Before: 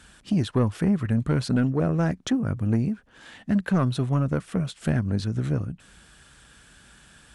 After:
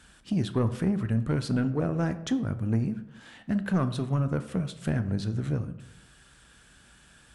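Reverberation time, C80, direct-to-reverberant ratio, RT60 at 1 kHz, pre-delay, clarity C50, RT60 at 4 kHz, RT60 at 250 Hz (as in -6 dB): 0.85 s, 16.0 dB, 10.5 dB, 0.80 s, 13 ms, 13.5 dB, 0.50 s, 0.95 s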